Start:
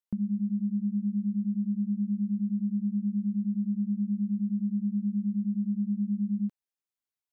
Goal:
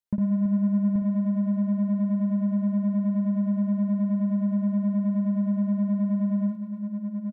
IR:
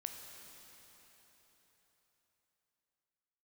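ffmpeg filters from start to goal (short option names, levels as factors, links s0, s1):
-filter_complex "[0:a]equalizer=f=110:w=0.75:g=6.5,asplit=2[s0][s1];[s1]acrusher=bits=3:mix=0:aa=0.5,volume=0.335[s2];[s0][s2]amix=inputs=2:normalize=0,aecho=1:1:55|329|832|894:0.596|0.211|0.447|0.168,volume=0.841"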